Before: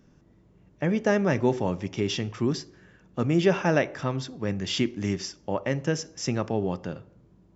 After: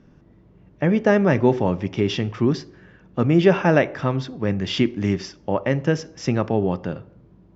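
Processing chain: air absorption 160 m; gain +6.5 dB

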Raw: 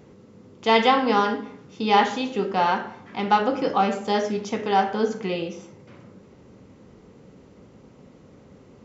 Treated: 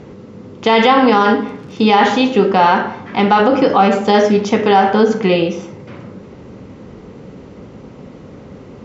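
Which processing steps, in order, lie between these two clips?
1.39–1.96 crackle 81/s -39 dBFS; air absorption 85 m; maximiser +15 dB; gain -1 dB

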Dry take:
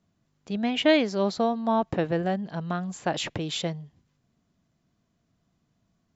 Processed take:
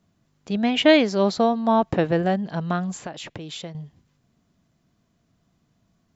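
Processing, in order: 2.96–3.75 compressor 3:1, threshold -41 dBFS, peak gain reduction 14.5 dB; gain +5 dB

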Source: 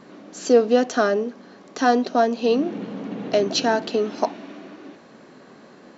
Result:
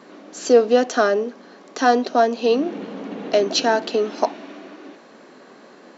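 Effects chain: HPF 260 Hz 12 dB/oct; gain +2.5 dB

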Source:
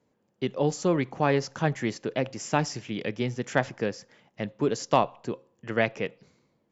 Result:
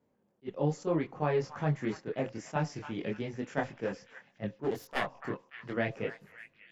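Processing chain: 4.62–5.71 self-modulated delay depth 0.52 ms; high shelf 2700 Hz -10.5 dB; in parallel at +1.5 dB: level quantiser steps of 19 dB; on the sum: chorus voices 4, 0.6 Hz, delay 23 ms, depth 3.9 ms; on a send: delay with a stepping band-pass 0.29 s, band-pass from 1300 Hz, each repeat 0.7 oct, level -9 dB; on the sum: attack slew limiter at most 480 dB/s; gain -4 dB

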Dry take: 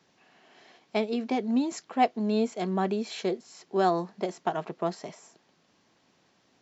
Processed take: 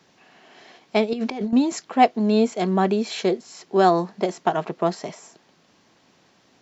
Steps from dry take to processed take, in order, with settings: 1.13–1.53 negative-ratio compressor -35 dBFS, ratio -1; gain +7.5 dB

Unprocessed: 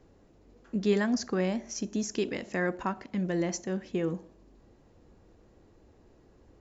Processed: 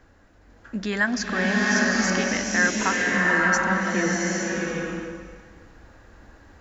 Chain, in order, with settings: in parallel at 0 dB: limiter -23.5 dBFS, peak gain reduction 8.5 dB; on the sum: fifteen-band EQ 160 Hz -8 dB, 400 Hz -9 dB, 1600 Hz +11 dB; bloom reverb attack 0.82 s, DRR -4.5 dB

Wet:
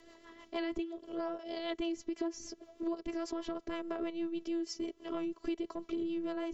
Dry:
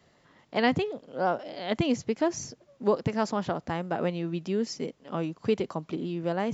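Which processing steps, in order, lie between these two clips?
transient shaper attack -6 dB, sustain -1 dB; robotiser 333 Hz; rotary speaker horn 6.3 Hz; compressor 6:1, threshold -46 dBFS, peak gain reduction 19 dB; small resonant body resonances 400/1100/3100 Hz, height 8 dB, ringing for 35 ms; gain +9 dB

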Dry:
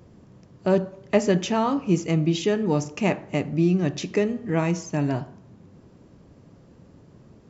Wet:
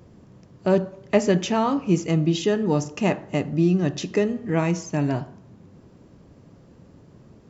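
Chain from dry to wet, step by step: 2.09–4.35 notch 2300 Hz, Q 8.4; gain +1 dB

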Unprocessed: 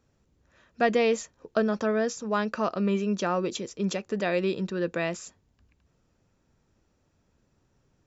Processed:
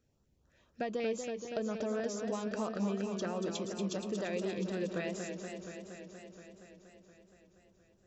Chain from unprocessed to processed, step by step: compressor, threshold -26 dBFS, peak gain reduction 8.5 dB; LFO notch saw up 4 Hz 880–2600 Hz; warbling echo 0.236 s, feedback 75%, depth 95 cents, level -6.5 dB; gain -6 dB

